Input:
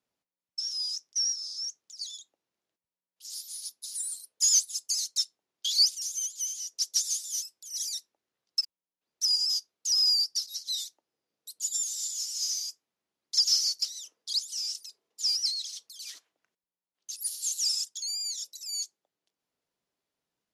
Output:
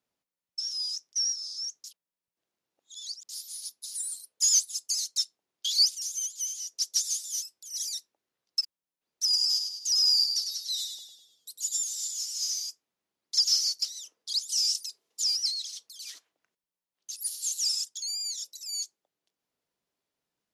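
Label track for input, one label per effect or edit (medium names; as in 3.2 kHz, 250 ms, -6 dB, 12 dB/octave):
1.840000	3.290000	reverse
9.230000	11.810000	frequency-shifting echo 101 ms, feedback 49%, per repeat -55 Hz, level -6 dB
14.490000	15.240000	peaking EQ 8.5 kHz +8 dB 3 oct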